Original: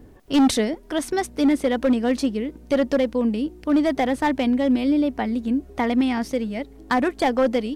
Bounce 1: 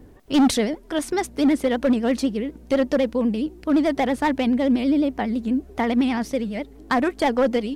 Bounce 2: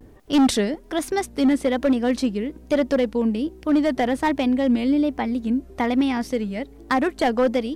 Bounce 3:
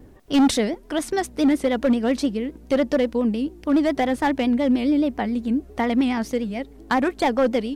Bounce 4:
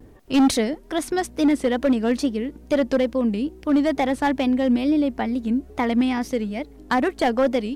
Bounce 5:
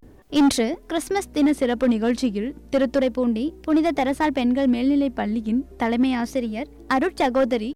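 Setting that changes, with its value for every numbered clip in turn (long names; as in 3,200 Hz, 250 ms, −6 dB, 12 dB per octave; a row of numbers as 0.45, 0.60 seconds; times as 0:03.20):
pitch vibrato, speed: 12, 1.2, 7.2, 2.3, 0.33 Hertz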